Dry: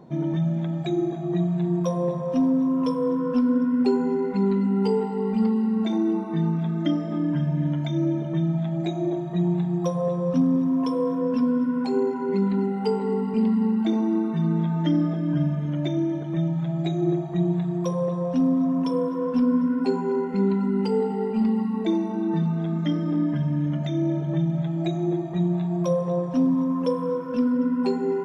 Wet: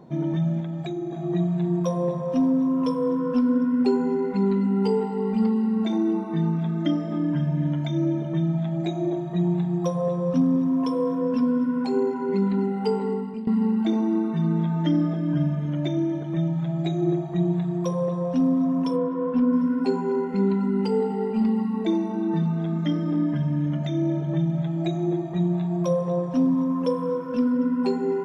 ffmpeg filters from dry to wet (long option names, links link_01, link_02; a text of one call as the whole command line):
ffmpeg -i in.wav -filter_complex "[0:a]asettb=1/sr,asplit=3[link_01][link_02][link_03];[link_01]atrim=end=0.604[link_04];[link_02]atrim=start=0.6:end=1.18,asetpts=PTS-STARTPTS,afade=type=in:duration=0.004:curve=qsin,afade=type=out:start_time=0.576:duration=0.004:curve=qsin,acompressor=threshold=-27dB:ratio=4:attack=3.2:release=140:knee=1:detection=peak[link_05];[link_03]atrim=start=1.176[link_06];[link_04][link_05]acrossfade=duration=0.004:curve1=hsin:curve2=qsin[link_07];[link_07][link_06]acrossfade=duration=0.004:curve1=qsin:curve2=hsin,asettb=1/sr,asplit=3[link_08][link_09][link_10];[link_08]atrim=end=18.964[link_11];[link_09]atrim=start=18.96:end=19.53,asetpts=PTS-STARTPTS,afade=type=in:duration=0.004:curve=qsin,afade=type=out:start_time=0.566:duration=0.004:curve=qsin,lowpass=2800[link_12];[link_10]atrim=start=19.526[link_13];[link_11][link_12]acrossfade=duration=0.004:curve1=hsin:curve2=qsin[link_14];[link_14][link_13]acrossfade=duration=0.004:curve1=qsin:curve2=hsin,asplit=2[link_15][link_16];[link_15]atrim=end=13.47,asetpts=PTS-STARTPTS,afade=type=out:start_time=13.03:duration=0.44:silence=0.149624[link_17];[link_16]atrim=start=13.47,asetpts=PTS-STARTPTS,afade=type=in:duration=0.004:curve=hsin:silence=0.149624[link_18];[link_17][link_18]concat=n=2:v=0:a=1" out.wav